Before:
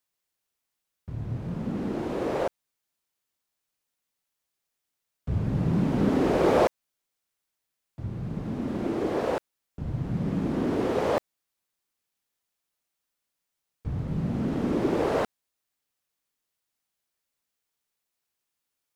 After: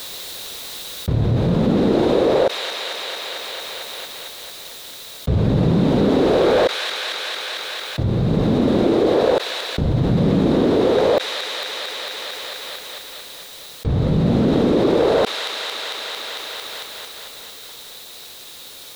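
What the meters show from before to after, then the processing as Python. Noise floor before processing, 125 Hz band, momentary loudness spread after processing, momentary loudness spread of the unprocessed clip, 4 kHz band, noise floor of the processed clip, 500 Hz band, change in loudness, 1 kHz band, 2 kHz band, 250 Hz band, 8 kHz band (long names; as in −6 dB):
−84 dBFS, +10.5 dB, 17 LU, 12 LU, +23.0 dB, −38 dBFS, +11.0 dB, +8.0 dB, +8.0 dB, +13.0 dB, +9.5 dB, +18.0 dB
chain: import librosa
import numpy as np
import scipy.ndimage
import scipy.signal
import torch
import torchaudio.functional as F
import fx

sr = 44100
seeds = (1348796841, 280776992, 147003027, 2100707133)

y = fx.peak_eq(x, sr, hz=490.0, db=7.5, octaves=0.88)
y = np.clip(10.0 ** (14.5 / 20.0) * y, -1.0, 1.0) / 10.0 ** (14.5 / 20.0)
y = fx.rider(y, sr, range_db=3, speed_s=0.5)
y = fx.peak_eq(y, sr, hz=3800.0, db=14.5, octaves=0.4)
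y = fx.echo_wet_highpass(y, sr, ms=225, feedback_pct=69, hz=2100.0, wet_db=-20.0)
y = fx.env_flatten(y, sr, amount_pct=70)
y = F.gain(torch.from_numpy(y), 5.0).numpy()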